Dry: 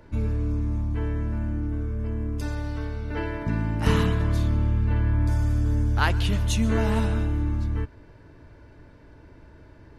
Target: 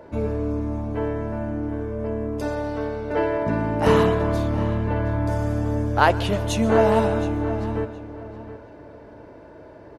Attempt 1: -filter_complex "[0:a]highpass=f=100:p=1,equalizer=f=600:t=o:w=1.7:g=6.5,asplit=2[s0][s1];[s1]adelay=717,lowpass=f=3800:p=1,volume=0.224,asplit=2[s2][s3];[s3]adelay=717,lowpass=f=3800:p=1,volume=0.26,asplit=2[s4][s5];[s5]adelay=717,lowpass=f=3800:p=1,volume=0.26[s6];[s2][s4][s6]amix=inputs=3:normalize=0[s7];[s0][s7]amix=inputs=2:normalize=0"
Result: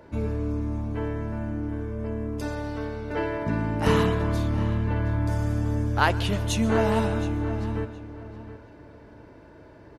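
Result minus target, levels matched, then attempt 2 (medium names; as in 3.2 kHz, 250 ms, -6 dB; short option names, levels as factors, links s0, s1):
500 Hz band -3.5 dB
-filter_complex "[0:a]highpass=f=100:p=1,equalizer=f=600:t=o:w=1.7:g=15,asplit=2[s0][s1];[s1]adelay=717,lowpass=f=3800:p=1,volume=0.224,asplit=2[s2][s3];[s3]adelay=717,lowpass=f=3800:p=1,volume=0.26,asplit=2[s4][s5];[s5]adelay=717,lowpass=f=3800:p=1,volume=0.26[s6];[s2][s4][s6]amix=inputs=3:normalize=0[s7];[s0][s7]amix=inputs=2:normalize=0"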